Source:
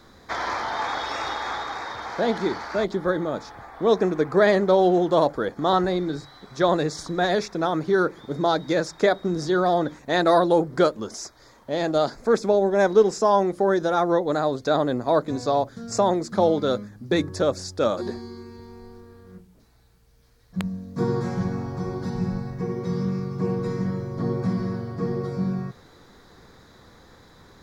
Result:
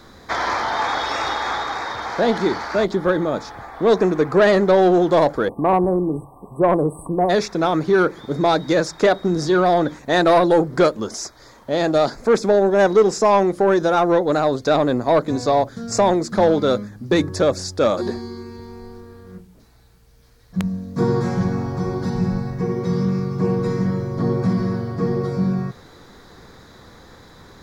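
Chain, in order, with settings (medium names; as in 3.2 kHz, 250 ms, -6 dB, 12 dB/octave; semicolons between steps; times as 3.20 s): spectral selection erased 5.49–7.30 s, 1.2–7.9 kHz; saturation -13 dBFS, distortion -17 dB; trim +6 dB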